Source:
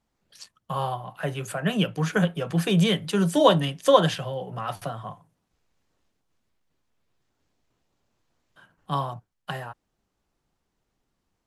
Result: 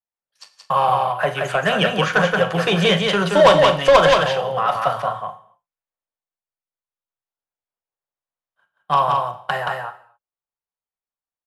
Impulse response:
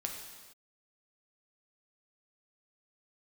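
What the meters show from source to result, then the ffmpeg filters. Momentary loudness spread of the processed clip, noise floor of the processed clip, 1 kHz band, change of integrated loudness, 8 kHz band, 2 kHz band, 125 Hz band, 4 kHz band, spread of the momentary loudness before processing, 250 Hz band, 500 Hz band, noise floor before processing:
12 LU, below −85 dBFS, +11.0 dB, +7.0 dB, +3.0 dB, +13.0 dB, +0.5 dB, +8.0 dB, 17 LU, +0.5 dB, +8.5 dB, −78 dBFS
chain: -filter_complex "[0:a]lowshelf=frequency=400:width_type=q:width=1.5:gain=-6.5,agate=range=-33dB:threshold=-38dB:ratio=3:detection=peak,acrossover=split=6400[link_01][link_02];[link_02]acompressor=threshold=-56dB:ratio=4:attack=1:release=60[link_03];[link_01][link_03]amix=inputs=2:normalize=0,equalizer=frequency=1200:width=0.55:gain=7,acontrast=43,asoftclip=type=tanh:threshold=-6dB,aecho=1:1:176:0.668,asplit=2[link_04][link_05];[1:a]atrim=start_sample=2205,asetrate=88200,aresample=44100,adelay=40[link_06];[link_05][link_06]afir=irnorm=-1:irlink=0,volume=-5dB[link_07];[link_04][link_07]amix=inputs=2:normalize=0"

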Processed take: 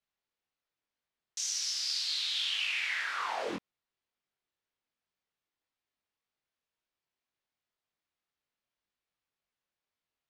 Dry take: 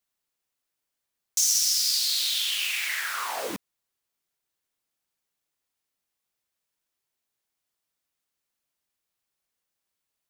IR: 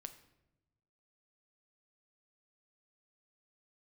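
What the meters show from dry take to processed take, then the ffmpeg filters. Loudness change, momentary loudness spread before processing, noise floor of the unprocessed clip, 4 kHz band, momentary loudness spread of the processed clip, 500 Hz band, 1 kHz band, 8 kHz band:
−8.0 dB, 12 LU, −84 dBFS, −6.5 dB, 8 LU, −2.5 dB, −2.5 dB, −12.5 dB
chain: -af "lowpass=4000,flanger=delay=20:depth=4.9:speed=1.9"

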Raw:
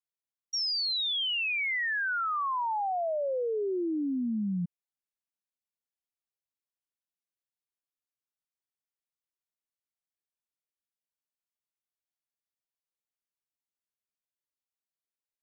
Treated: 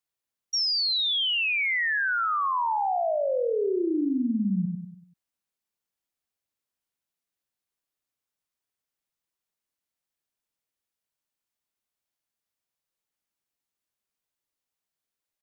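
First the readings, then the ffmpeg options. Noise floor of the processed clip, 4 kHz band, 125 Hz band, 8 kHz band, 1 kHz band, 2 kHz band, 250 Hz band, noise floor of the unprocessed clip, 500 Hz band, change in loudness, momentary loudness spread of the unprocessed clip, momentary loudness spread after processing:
below −85 dBFS, +4.5 dB, +5.0 dB, can't be measured, +4.5 dB, +4.5 dB, +5.0 dB, below −85 dBFS, +4.5 dB, +4.5 dB, 5 LU, 5 LU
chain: -filter_complex "[0:a]asplit=2[link_01][link_02];[link_02]adelay=96,lowpass=frequency=840:poles=1,volume=-4.5dB,asplit=2[link_03][link_04];[link_04]adelay=96,lowpass=frequency=840:poles=1,volume=0.44,asplit=2[link_05][link_06];[link_06]adelay=96,lowpass=frequency=840:poles=1,volume=0.44,asplit=2[link_07][link_08];[link_08]adelay=96,lowpass=frequency=840:poles=1,volume=0.44,asplit=2[link_09][link_10];[link_10]adelay=96,lowpass=frequency=840:poles=1,volume=0.44[link_11];[link_01][link_03][link_05][link_07][link_09][link_11]amix=inputs=6:normalize=0,asplit=2[link_12][link_13];[link_13]alimiter=level_in=5dB:limit=-24dB:level=0:latency=1:release=220,volume=-5dB,volume=-0.5dB[link_14];[link_12][link_14]amix=inputs=2:normalize=0"

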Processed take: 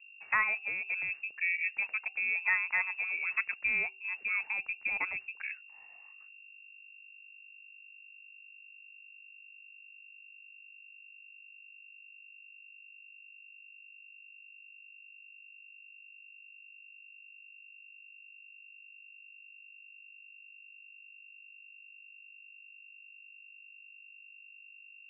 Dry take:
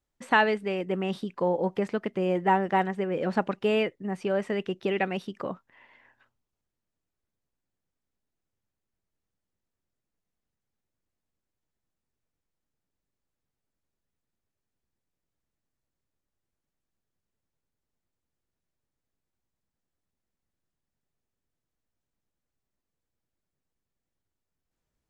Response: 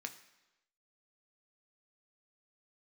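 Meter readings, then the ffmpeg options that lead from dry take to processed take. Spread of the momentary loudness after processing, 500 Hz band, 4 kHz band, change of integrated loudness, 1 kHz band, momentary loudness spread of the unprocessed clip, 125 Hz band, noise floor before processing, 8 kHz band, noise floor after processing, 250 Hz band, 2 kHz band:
21 LU, −29.5 dB, below −10 dB, −3.5 dB, −14.0 dB, 9 LU, below −25 dB, below −85 dBFS, can't be measured, −55 dBFS, below −30 dB, +3.0 dB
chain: -af "aeval=exprs='val(0)+0.00447*(sin(2*PI*50*n/s)+sin(2*PI*2*50*n/s)/2+sin(2*PI*3*50*n/s)/3+sin(2*PI*4*50*n/s)/4+sin(2*PI*5*50*n/s)/5)':channel_layout=same,aemphasis=mode=reproduction:type=75fm,lowpass=frequency=2400:width_type=q:width=0.5098,lowpass=frequency=2400:width_type=q:width=0.6013,lowpass=frequency=2400:width_type=q:width=0.9,lowpass=frequency=2400:width_type=q:width=2.563,afreqshift=-2800,bandreject=frequency=384.8:width_type=h:width=4,bandreject=frequency=769.6:width_type=h:width=4,volume=-7dB"

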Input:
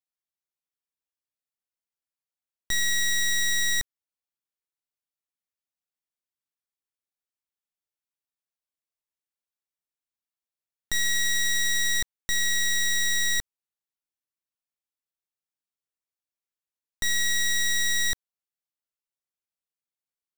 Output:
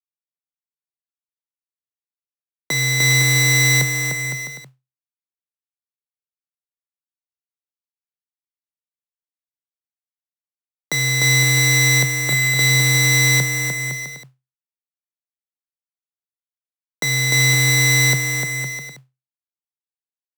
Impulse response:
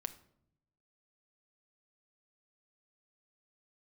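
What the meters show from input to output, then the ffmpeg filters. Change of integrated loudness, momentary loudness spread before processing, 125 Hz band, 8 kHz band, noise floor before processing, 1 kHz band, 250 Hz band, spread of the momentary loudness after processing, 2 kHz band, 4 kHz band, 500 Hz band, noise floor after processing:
+9.0 dB, 6 LU, +31.0 dB, +8.5 dB, below −85 dBFS, +19.0 dB, +22.5 dB, 12 LU, +11.0 dB, +7.0 dB, can't be measured, below −85 dBFS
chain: -filter_complex "[0:a]equalizer=frequency=440:width=0.39:gain=14.5,acrusher=bits=5:mix=0:aa=0.000001,afreqshift=130,asplit=2[link_01][link_02];[link_02]aecho=0:1:300|510|657|759.9|831.9:0.631|0.398|0.251|0.158|0.1[link_03];[link_01][link_03]amix=inputs=2:normalize=0,acrusher=bits=4:mode=log:mix=0:aa=0.000001,volume=3dB"

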